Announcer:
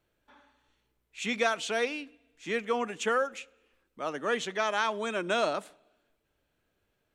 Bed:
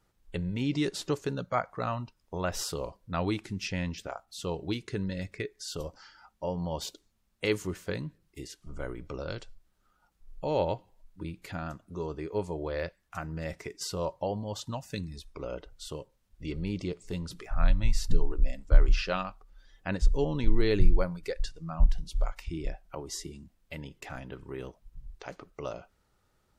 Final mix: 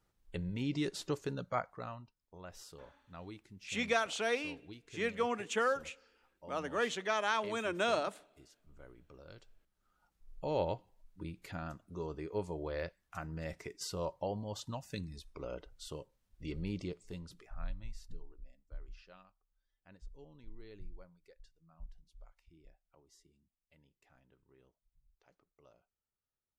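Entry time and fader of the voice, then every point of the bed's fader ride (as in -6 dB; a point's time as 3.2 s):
2.50 s, -4.0 dB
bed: 1.58 s -6 dB
2.18 s -18.5 dB
9.24 s -18.5 dB
9.98 s -5.5 dB
16.78 s -5.5 dB
18.47 s -27.5 dB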